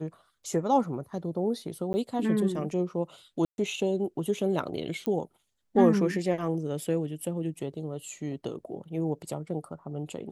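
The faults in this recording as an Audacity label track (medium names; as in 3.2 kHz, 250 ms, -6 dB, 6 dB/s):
1.930000	1.940000	dropout 10 ms
3.450000	3.580000	dropout 131 ms
5.060000	5.060000	pop -17 dBFS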